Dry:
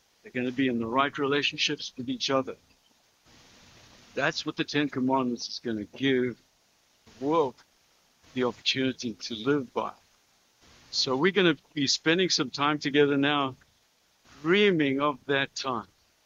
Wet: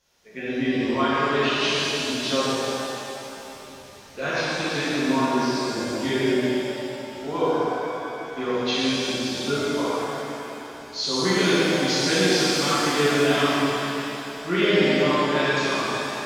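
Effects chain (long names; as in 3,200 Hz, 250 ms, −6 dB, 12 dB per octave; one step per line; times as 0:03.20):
reverb with rising layers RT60 3.3 s, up +7 semitones, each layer −8 dB, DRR −12 dB
level −8 dB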